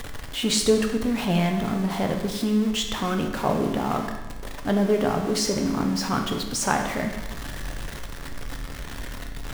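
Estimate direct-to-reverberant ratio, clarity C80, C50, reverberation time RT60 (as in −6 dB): 3.0 dB, 8.0 dB, 6.0 dB, 1.1 s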